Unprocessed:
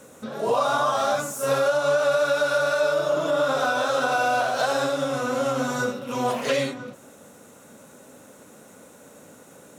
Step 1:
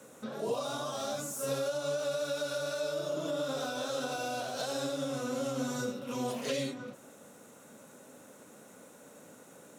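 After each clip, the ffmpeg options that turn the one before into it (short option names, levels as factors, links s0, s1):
-filter_complex "[0:a]highpass=110,acrossover=split=480|3000[s0][s1][s2];[s1]acompressor=threshold=0.0126:ratio=4[s3];[s0][s3][s2]amix=inputs=3:normalize=0,volume=0.531"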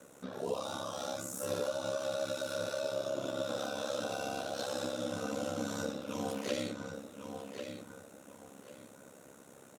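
-filter_complex "[0:a]asplit=2[s0][s1];[s1]adelay=1094,lowpass=f=4500:p=1,volume=0.447,asplit=2[s2][s3];[s3]adelay=1094,lowpass=f=4500:p=1,volume=0.28,asplit=2[s4][s5];[s5]adelay=1094,lowpass=f=4500:p=1,volume=0.28[s6];[s0][s2][s4][s6]amix=inputs=4:normalize=0,aeval=exprs='val(0)*sin(2*PI*34*n/s)':c=same"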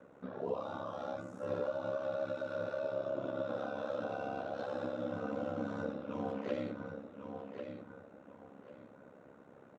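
-af "lowpass=1700,volume=0.891"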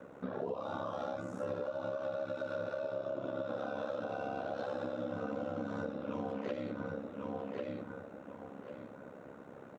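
-af "acompressor=threshold=0.00891:ratio=6,volume=2.11"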